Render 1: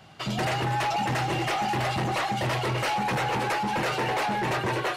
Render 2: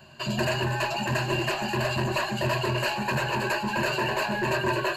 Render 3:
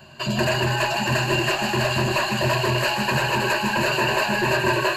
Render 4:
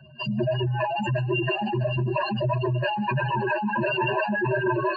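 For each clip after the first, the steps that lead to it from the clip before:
ripple EQ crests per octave 1.4, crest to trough 15 dB; gain -2 dB
thinning echo 0.156 s, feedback 85%, high-pass 1200 Hz, level -5.5 dB; gain +4.5 dB
spectral contrast raised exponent 3; gain -2.5 dB

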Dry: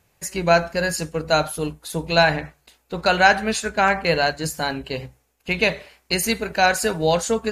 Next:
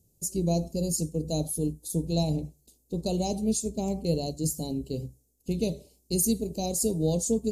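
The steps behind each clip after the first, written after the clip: Chebyshev band-stop 310–7500 Hz, order 2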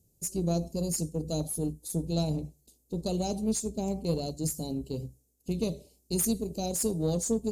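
one diode to ground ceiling -17.5 dBFS; gain -1.5 dB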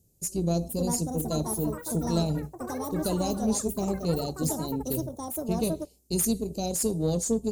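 echoes that change speed 0.536 s, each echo +6 st, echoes 3, each echo -6 dB; gain +2 dB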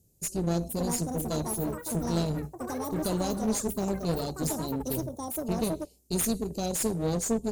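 one-sided clip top -31 dBFS

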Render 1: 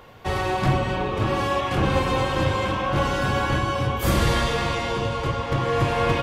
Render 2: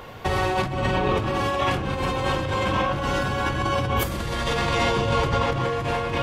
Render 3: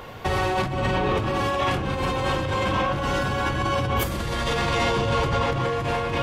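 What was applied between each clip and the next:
negative-ratio compressor -27 dBFS, ratio -1; gain +3 dB
soft clip -15.5 dBFS, distortion -19 dB; gain +1 dB

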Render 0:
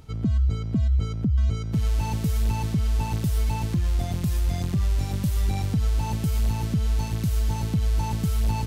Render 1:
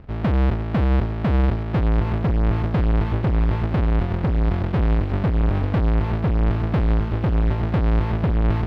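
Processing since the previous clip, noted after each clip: half-waves squared off; air absorption 380 m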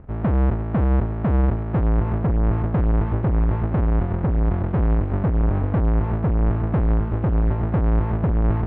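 LPF 1500 Hz 12 dB/oct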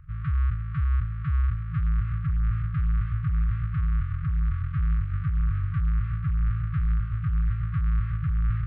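FFT band-reject 170–1100 Hz; gain -4.5 dB

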